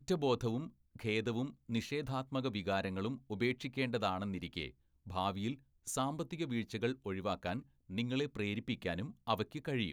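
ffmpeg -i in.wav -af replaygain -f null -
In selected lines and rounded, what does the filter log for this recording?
track_gain = +17.4 dB
track_peak = 0.094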